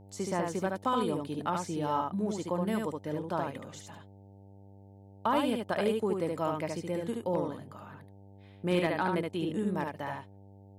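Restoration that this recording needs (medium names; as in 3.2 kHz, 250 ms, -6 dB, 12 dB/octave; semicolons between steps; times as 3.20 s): clip repair -18.5 dBFS; de-hum 98.6 Hz, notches 9; inverse comb 73 ms -3.5 dB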